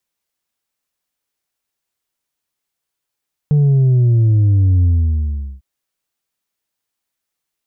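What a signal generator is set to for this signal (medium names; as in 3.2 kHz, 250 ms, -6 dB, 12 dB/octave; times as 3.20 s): sub drop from 150 Hz, over 2.10 s, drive 3 dB, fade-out 0.77 s, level -9.5 dB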